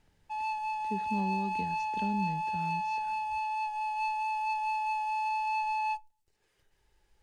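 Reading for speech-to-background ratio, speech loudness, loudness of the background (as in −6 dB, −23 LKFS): −5.0 dB, −37.5 LKFS, −32.5 LKFS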